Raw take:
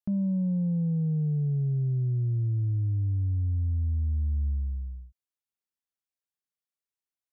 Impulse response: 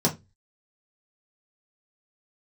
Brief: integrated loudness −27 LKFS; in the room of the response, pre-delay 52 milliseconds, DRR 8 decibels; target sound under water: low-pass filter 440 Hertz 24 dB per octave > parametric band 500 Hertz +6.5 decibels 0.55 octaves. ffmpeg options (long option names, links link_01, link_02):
-filter_complex "[0:a]asplit=2[link_01][link_02];[1:a]atrim=start_sample=2205,adelay=52[link_03];[link_02][link_03]afir=irnorm=-1:irlink=0,volume=-20dB[link_04];[link_01][link_04]amix=inputs=2:normalize=0,lowpass=frequency=440:width=0.5412,lowpass=frequency=440:width=1.3066,equalizer=frequency=500:width_type=o:width=0.55:gain=6.5,volume=-3.5dB"